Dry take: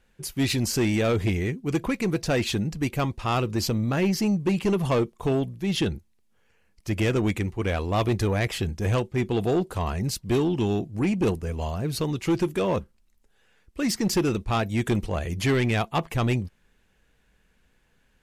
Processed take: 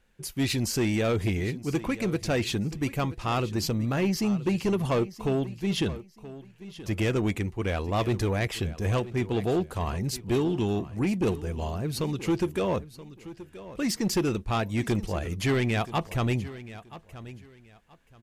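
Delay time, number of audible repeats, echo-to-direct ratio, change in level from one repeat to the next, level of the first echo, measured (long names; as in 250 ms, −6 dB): 977 ms, 2, −16.0 dB, −12.5 dB, −16.0 dB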